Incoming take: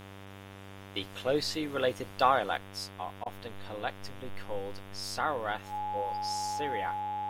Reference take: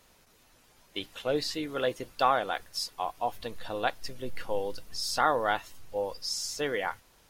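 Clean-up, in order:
hum removal 97.9 Hz, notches 38
notch filter 840 Hz, Q 30
repair the gap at 0:03.24, 18 ms
level correction +6 dB, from 0:02.57

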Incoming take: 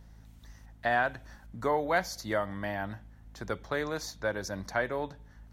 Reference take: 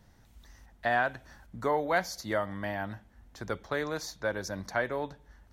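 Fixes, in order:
hum removal 54 Hz, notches 5

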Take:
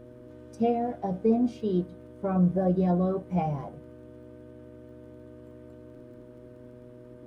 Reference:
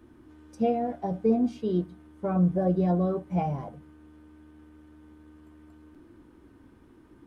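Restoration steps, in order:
click removal
hum removal 123 Hz, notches 5

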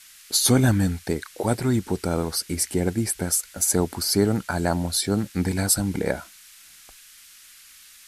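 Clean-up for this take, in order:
noise reduction from a noise print 20 dB

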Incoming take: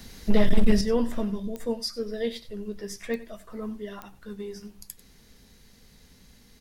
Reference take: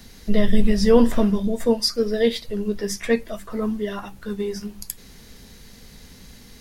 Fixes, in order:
clipped peaks rebuilt −11 dBFS
click removal
echo removal 94 ms −17 dB
level 0 dB, from 0:00.81 +10 dB

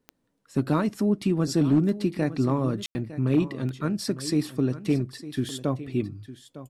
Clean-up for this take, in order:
clipped peaks rebuilt −13.5 dBFS
click removal
ambience match 0:02.86–0:02.95
echo removal 906 ms −15 dB

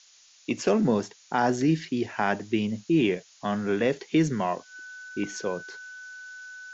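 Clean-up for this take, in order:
notch filter 1,500 Hz, Q 30
noise reduction from a noise print 15 dB

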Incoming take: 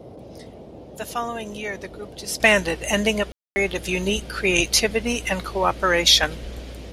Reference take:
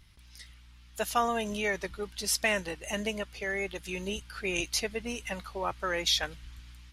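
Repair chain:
ambience match 0:03.32–0:03.56
noise reduction from a noise print 12 dB
level 0 dB, from 0:02.40 −12 dB

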